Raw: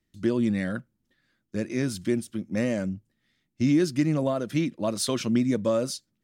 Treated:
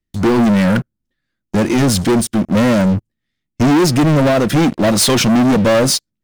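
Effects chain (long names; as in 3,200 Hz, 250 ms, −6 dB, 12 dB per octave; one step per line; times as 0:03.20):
low-shelf EQ 64 Hz +11.5 dB
leveller curve on the samples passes 5
level +3.5 dB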